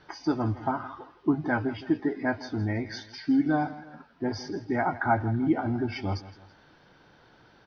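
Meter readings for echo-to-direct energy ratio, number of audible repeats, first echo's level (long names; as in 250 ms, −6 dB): −15.5 dB, 2, −16.5 dB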